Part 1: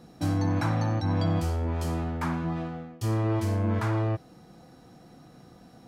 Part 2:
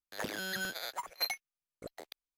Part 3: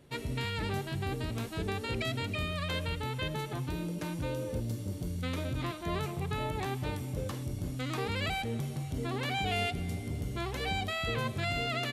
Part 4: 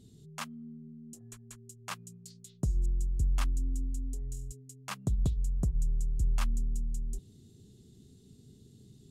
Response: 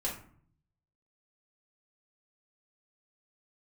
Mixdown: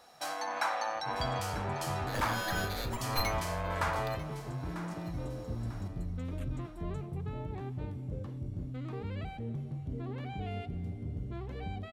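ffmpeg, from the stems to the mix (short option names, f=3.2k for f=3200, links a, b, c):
-filter_complex "[0:a]highpass=f=630:w=0.5412,highpass=f=630:w=1.3066,volume=2dB,asplit=2[a][b];[b]volume=-12.5dB[c];[1:a]aeval=exprs='clip(val(0),-1,0.0126)':c=same,adelay=1950,volume=-3dB,asplit=3[d][e][f];[e]volume=-4dB[g];[f]volume=-15.5dB[h];[2:a]lowpass=f=1.6k:p=1,lowshelf=f=480:g=10,adelay=950,volume=-11.5dB[i];[3:a]asplit=2[j][k];[k]afreqshift=-2.5[l];[j][l]amix=inputs=2:normalize=1,volume=-13.5dB[m];[4:a]atrim=start_sample=2205[n];[g][n]afir=irnorm=-1:irlink=0[o];[c][h]amix=inputs=2:normalize=0,aecho=0:1:945|1890|2835|3780|4725:1|0.33|0.109|0.0359|0.0119[p];[a][d][i][m][o][p]amix=inputs=6:normalize=0"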